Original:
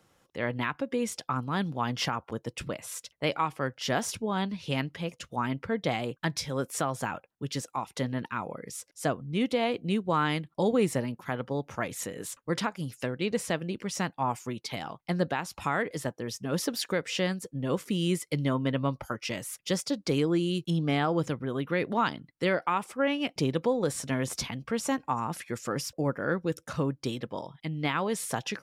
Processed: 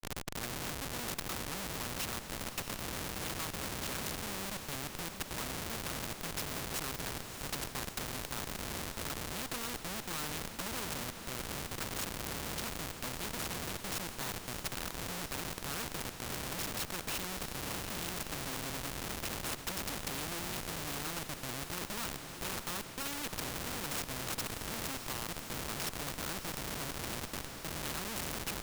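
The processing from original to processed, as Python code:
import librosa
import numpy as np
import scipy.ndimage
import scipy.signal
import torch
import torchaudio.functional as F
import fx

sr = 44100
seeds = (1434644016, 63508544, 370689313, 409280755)

p1 = fx.lower_of_two(x, sr, delay_ms=0.74)
p2 = fx.dmg_wind(p1, sr, seeds[0], corner_hz=190.0, level_db=-32.0)
p3 = fx.highpass(p2, sr, hz=46.0, slope=6)
p4 = fx.level_steps(p3, sr, step_db=14)
p5 = p3 + (p4 * 10.0 ** (-1.5 / 20.0))
p6 = fx.schmitt(p5, sr, flips_db=-31.5)
p7 = p6 + fx.echo_diffused(p6, sr, ms=661, feedback_pct=68, wet_db=-14.0, dry=0)
p8 = fx.spectral_comp(p7, sr, ratio=2.0)
y = p8 * 10.0 ** (-4.0 / 20.0)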